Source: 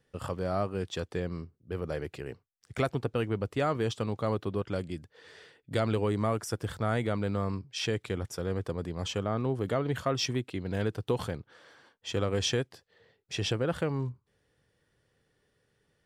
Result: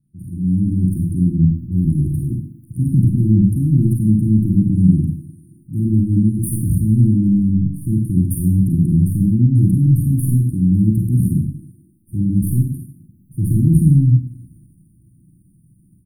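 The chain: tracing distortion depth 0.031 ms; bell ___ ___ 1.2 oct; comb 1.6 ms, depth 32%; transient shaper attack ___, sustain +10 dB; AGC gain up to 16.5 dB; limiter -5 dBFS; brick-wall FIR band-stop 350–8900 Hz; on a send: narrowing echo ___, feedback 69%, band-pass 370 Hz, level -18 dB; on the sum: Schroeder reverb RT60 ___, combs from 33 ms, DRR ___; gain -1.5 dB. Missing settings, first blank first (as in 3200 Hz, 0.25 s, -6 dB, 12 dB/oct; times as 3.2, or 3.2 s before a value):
160 Hz, +11 dB, -6 dB, 87 ms, 0.58 s, 0 dB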